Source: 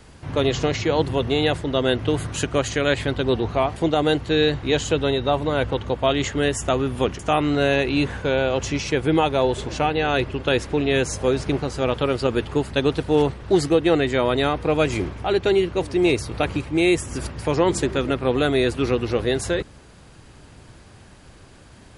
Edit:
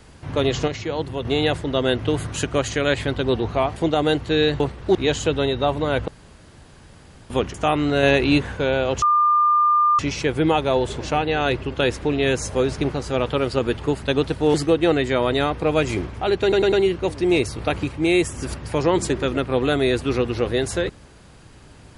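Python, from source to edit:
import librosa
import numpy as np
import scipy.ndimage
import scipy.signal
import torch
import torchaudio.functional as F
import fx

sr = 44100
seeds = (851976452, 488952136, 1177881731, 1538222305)

y = fx.edit(x, sr, fx.clip_gain(start_s=0.68, length_s=0.57, db=-5.5),
    fx.room_tone_fill(start_s=5.73, length_s=1.22),
    fx.clip_gain(start_s=7.68, length_s=0.35, db=3.5),
    fx.insert_tone(at_s=8.67, length_s=0.97, hz=1200.0, db=-13.5),
    fx.move(start_s=13.22, length_s=0.35, to_s=4.6),
    fx.stutter(start_s=15.45, slice_s=0.1, count=4), tone=tone)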